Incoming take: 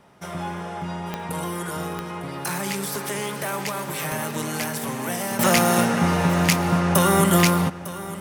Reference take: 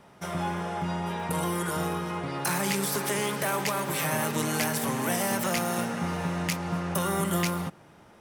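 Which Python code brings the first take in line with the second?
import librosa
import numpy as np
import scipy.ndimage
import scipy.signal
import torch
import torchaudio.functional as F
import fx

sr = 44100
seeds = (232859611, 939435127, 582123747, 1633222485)

y = fx.fix_declick_ar(x, sr, threshold=10.0)
y = fx.fix_echo_inverse(y, sr, delay_ms=903, level_db=-15.5)
y = fx.fix_level(y, sr, at_s=5.39, step_db=-10.0)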